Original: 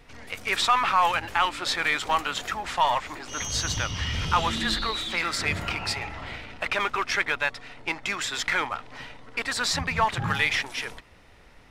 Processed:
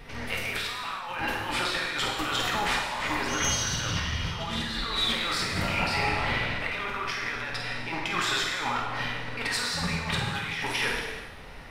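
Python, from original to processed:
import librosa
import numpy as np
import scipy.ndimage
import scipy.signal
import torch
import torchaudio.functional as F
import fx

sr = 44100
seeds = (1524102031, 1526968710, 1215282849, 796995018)

y = fx.peak_eq(x, sr, hz=7200.0, db=-6.5, octaves=0.49)
y = fx.over_compress(y, sr, threshold_db=-34.0, ratio=-1.0)
y = fx.room_flutter(y, sr, wall_m=8.5, rt60_s=0.37)
y = fx.rev_gated(y, sr, seeds[0], gate_ms=450, shape='falling', drr_db=-0.5)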